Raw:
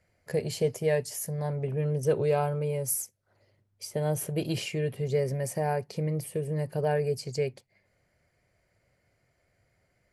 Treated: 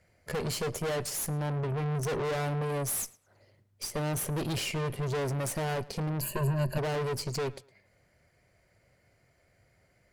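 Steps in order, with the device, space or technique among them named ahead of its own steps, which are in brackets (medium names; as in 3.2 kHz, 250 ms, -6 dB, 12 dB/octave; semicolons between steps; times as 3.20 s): rockabilly slapback (valve stage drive 38 dB, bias 0.75; tape echo 109 ms, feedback 29%, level -20 dB, low-pass 5.9 kHz); 6.21–6.78 s: rippled EQ curve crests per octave 1.4, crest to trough 16 dB; trim +8.5 dB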